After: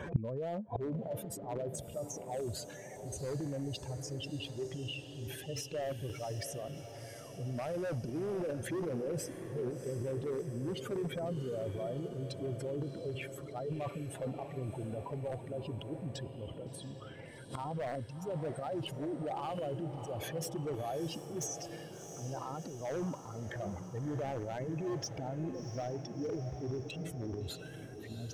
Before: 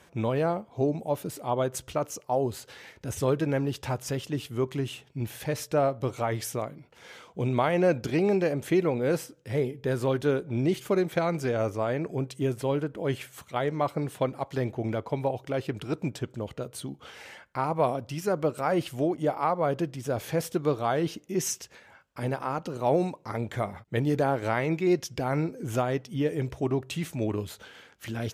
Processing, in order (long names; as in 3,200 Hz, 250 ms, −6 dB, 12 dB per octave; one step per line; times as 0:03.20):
expanding power law on the bin magnitudes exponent 2.3
transient designer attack −1 dB, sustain +11 dB
in parallel at −2.5 dB: brickwall limiter −20.5 dBFS, peak gain reduction 7.5 dB
on the sum: wave folding −16 dBFS
on a send: feedback delay with all-pass diffusion 692 ms, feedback 64%, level −9.5 dB
on the sum: gate with flip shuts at −26 dBFS, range −25 dB
level +9 dB